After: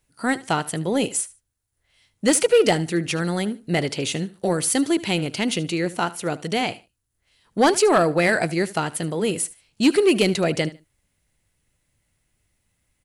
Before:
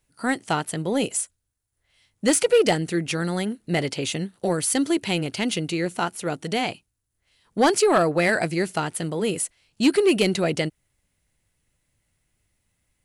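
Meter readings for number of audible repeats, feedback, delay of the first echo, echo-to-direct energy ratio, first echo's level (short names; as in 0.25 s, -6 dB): 2, 21%, 75 ms, -18.5 dB, -18.5 dB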